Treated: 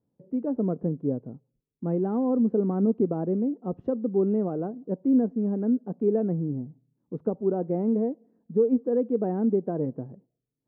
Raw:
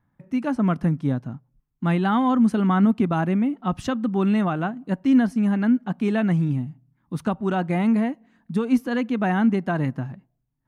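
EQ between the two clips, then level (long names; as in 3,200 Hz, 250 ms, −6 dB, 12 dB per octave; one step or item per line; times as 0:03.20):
high-pass filter 190 Hz 6 dB per octave
low-pass with resonance 460 Hz, resonance Q 4.9
−5.5 dB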